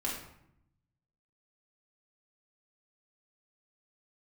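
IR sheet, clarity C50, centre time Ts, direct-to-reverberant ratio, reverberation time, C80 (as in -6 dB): 3.0 dB, 44 ms, -5.0 dB, 0.75 s, 6.5 dB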